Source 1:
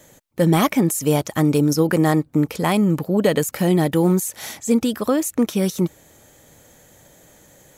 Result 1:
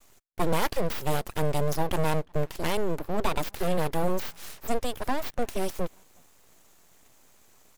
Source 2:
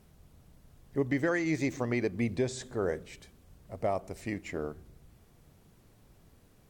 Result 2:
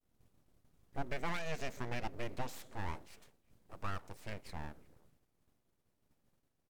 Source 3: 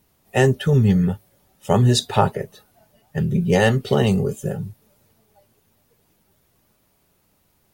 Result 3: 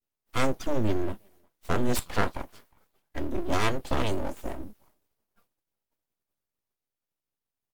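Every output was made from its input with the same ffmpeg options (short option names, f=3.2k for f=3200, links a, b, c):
-filter_complex "[0:a]agate=range=-33dB:threshold=-51dB:ratio=3:detection=peak,asplit=2[a][b];[b]adelay=360,highpass=300,lowpass=3.4k,asoftclip=type=hard:threshold=-10dB,volume=-28dB[c];[a][c]amix=inputs=2:normalize=0,aeval=exprs='abs(val(0))':c=same,volume=-6.5dB"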